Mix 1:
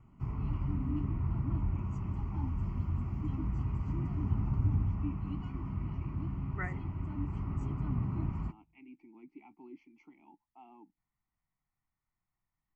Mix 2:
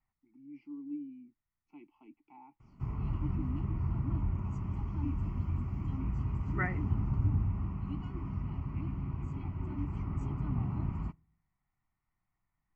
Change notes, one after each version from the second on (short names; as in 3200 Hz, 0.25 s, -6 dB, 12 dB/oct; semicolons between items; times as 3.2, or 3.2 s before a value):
second voice +5.0 dB; background: entry +2.60 s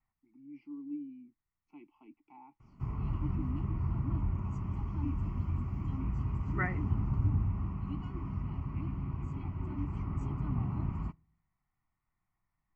master: add bell 1100 Hz +3 dB 0.2 oct